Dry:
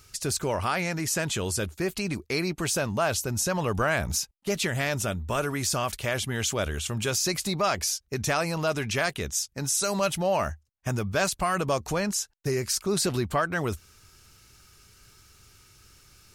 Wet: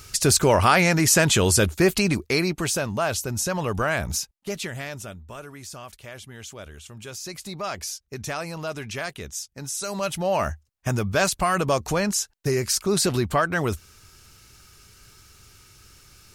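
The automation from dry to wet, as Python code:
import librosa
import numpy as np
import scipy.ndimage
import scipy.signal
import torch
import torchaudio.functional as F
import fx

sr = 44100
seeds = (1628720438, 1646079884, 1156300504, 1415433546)

y = fx.gain(x, sr, db=fx.line((1.89, 10.0), (2.84, 1.0), (4.16, 1.0), (5.42, -12.0), (6.93, -12.0), (7.75, -4.5), (9.76, -4.5), (10.52, 4.0)))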